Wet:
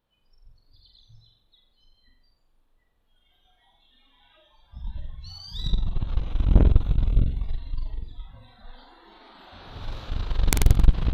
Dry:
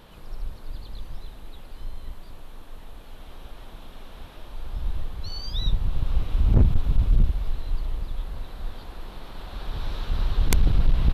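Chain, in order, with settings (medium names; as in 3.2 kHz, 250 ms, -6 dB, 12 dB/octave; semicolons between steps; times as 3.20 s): spectral noise reduction 24 dB; flutter echo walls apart 7.7 m, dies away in 0.57 s; Chebyshev shaper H 2 -7 dB, 3 -21 dB, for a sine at -6 dBFS; trim -2 dB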